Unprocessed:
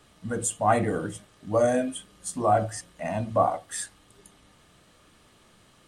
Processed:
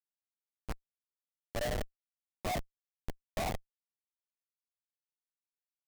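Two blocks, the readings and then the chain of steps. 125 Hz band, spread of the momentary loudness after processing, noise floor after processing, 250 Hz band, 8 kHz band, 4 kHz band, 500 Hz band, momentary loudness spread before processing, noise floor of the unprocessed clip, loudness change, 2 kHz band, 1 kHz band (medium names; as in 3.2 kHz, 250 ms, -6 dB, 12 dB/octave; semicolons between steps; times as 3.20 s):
-12.5 dB, 14 LU, under -85 dBFS, -16.5 dB, -17.5 dB, -3.5 dB, -16.5 dB, 12 LU, -59 dBFS, -13.0 dB, -9.5 dB, -17.0 dB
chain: band-pass sweep 2 kHz -> 790 Hz, 0.92–1.45 s; band-stop 2.9 kHz, Q 27; Schroeder reverb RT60 2.1 s, combs from 25 ms, DRR 6 dB; Schmitt trigger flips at -24 dBFS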